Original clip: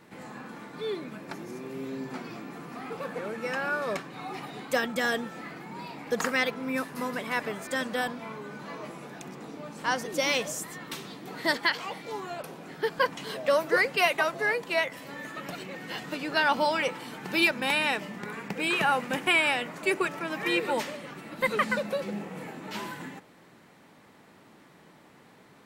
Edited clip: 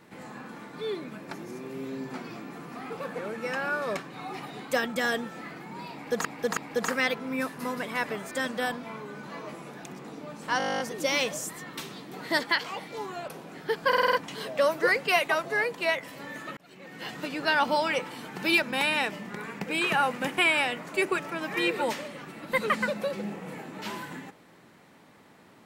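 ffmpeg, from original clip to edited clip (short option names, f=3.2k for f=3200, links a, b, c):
-filter_complex "[0:a]asplit=20[a][b][c][d][e][f][g][h][i][j][k][l][m][n][o][p][q][r][s][t];[a]atrim=end=6.252[u];[b]atrim=start=5.928:end=6.252[v];[c]atrim=start=5.928:end=9.962[w];[d]atrim=start=9.938:end=9.962[x];[e]atrim=start=9.938:end=9.962[y];[f]atrim=start=9.938:end=9.962[z];[g]atrim=start=9.938:end=9.962[aa];[h]atrim=start=9.938:end=9.962[ab];[i]atrim=start=9.938:end=9.962[ac];[j]atrim=start=9.938:end=9.962[ad];[k]atrim=start=9.938:end=9.962[ae];[l]atrim=start=9.938:end=9.962[af];[m]atrim=start=9.938:end=9.962[ag];[n]atrim=start=9.938:end=13.072[ah];[o]atrim=start=13.018:end=13.072[ai];[p]atrim=start=13.018:end=13.072[aj];[q]atrim=start=13.018:end=13.072[ak];[r]atrim=start=13.018:end=13.072[al];[s]atrim=start=13.018:end=15.46,asetpts=PTS-STARTPTS,afade=t=out:st=2.438:d=0.004:c=hsin[am];[t]atrim=start=15.46,asetpts=PTS-STARTPTS,afade=t=in:d=0.58[an];[u][v]acrossfade=d=0.004:c1=hsin:c2=hsin[ao];[ao][w]acrossfade=d=0.004:c1=hsin:c2=hsin[ap];[ap][x]acrossfade=d=0.004:c1=hsin:c2=hsin[aq];[aq][y]acrossfade=d=0.004:c1=hsin:c2=hsin[ar];[ar][z]acrossfade=d=0.004:c1=hsin:c2=hsin[as];[as][aa]acrossfade=d=0.004:c1=hsin:c2=hsin[at];[at][ab]acrossfade=d=0.004:c1=hsin:c2=hsin[au];[au][ac]acrossfade=d=0.004:c1=hsin:c2=hsin[av];[av][ad]acrossfade=d=0.004:c1=hsin:c2=hsin[aw];[aw][ae]acrossfade=d=0.004:c1=hsin:c2=hsin[ax];[ax][af]acrossfade=d=0.004:c1=hsin:c2=hsin[ay];[ay][ag]acrossfade=d=0.004:c1=hsin:c2=hsin[az];[az][ah]acrossfade=d=0.004:c1=hsin:c2=hsin[ba];[ba][ai]acrossfade=d=0.004:c1=hsin:c2=hsin[bb];[bb][aj]acrossfade=d=0.004:c1=hsin:c2=hsin[bc];[bc][ak]acrossfade=d=0.004:c1=hsin:c2=hsin[bd];[bd][al]acrossfade=d=0.004:c1=hsin:c2=hsin[be];[am][an]concat=n=2:v=0:a=1[bf];[be][bf]acrossfade=d=0.004:c1=hsin:c2=hsin"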